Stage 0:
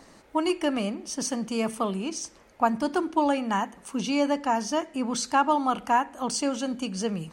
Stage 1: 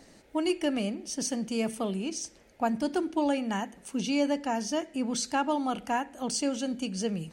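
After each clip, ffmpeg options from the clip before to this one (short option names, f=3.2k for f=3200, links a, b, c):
-af "equalizer=f=1.1k:t=o:w=0.69:g=-11,volume=-1.5dB"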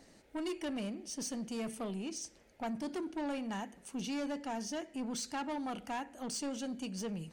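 -af "asoftclip=type=tanh:threshold=-27.5dB,volume=-5.5dB"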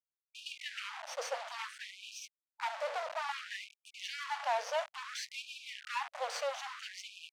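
-af "acrusher=bits=5:dc=4:mix=0:aa=0.000001,adynamicsmooth=sensitivity=7.5:basefreq=2.7k,afftfilt=real='re*gte(b*sr/1024,460*pow(2400/460,0.5+0.5*sin(2*PI*0.59*pts/sr)))':imag='im*gte(b*sr/1024,460*pow(2400/460,0.5+0.5*sin(2*PI*0.59*pts/sr)))':win_size=1024:overlap=0.75,volume=13.5dB"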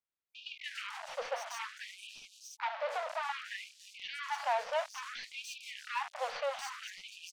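-filter_complex "[0:a]acrossover=split=720|2800|4800[a][b][c][d];[d]aeval=exprs='clip(val(0),-1,0.00335)':c=same[e];[a][b][c][e]amix=inputs=4:normalize=0,acrossover=split=4600[f][g];[g]adelay=290[h];[f][h]amix=inputs=2:normalize=0,volume=1dB"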